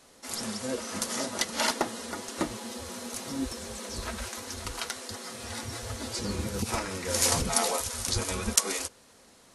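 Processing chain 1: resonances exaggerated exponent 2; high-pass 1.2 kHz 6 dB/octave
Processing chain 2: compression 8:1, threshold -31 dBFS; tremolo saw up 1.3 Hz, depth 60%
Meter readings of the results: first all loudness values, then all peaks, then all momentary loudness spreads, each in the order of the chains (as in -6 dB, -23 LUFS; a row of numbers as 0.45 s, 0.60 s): -33.5 LUFS, -39.0 LUFS; -4.0 dBFS, -16.5 dBFS; 17 LU, 6 LU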